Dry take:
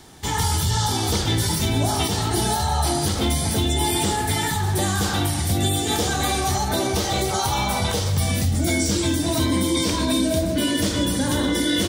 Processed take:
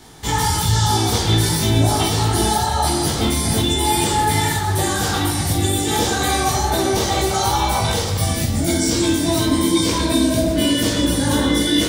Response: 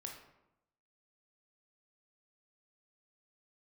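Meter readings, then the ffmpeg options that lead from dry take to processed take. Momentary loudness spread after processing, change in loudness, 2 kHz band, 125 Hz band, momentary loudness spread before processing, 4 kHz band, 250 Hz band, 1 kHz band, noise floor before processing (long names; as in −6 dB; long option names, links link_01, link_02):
3 LU, +3.5 dB, +3.0 dB, +3.0 dB, 2 LU, +3.5 dB, +4.0 dB, +5.0 dB, −25 dBFS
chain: -filter_complex "[0:a]asplit=2[link_01][link_02];[1:a]atrim=start_sample=2205,adelay=18[link_03];[link_02][link_03]afir=irnorm=-1:irlink=0,volume=5dB[link_04];[link_01][link_04]amix=inputs=2:normalize=0"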